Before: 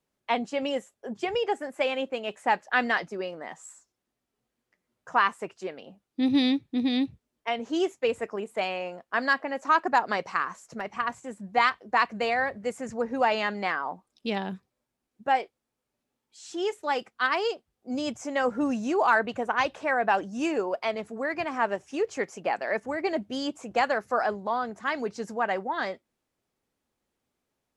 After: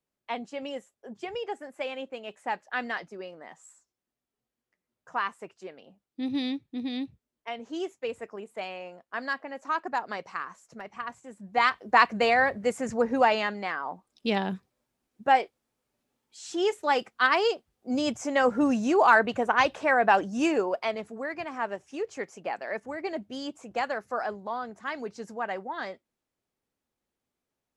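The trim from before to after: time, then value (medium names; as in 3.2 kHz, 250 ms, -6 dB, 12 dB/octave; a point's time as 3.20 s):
11.30 s -7 dB
11.87 s +4 dB
13.13 s +4 dB
13.67 s -4 dB
14.31 s +3 dB
20.45 s +3 dB
21.39 s -5 dB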